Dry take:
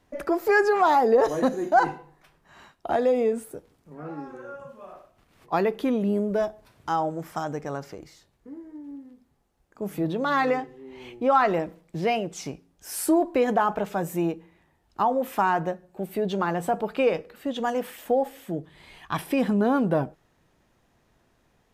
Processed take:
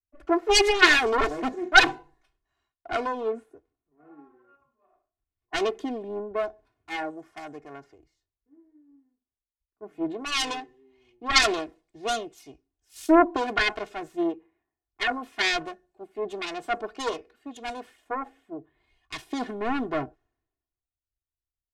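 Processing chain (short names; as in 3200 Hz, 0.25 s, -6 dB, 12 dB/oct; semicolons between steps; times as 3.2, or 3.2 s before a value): self-modulated delay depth 0.67 ms; LPF 9000 Hz 12 dB/oct; comb 2.8 ms, depth 86%; three-band expander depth 100%; gain -6.5 dB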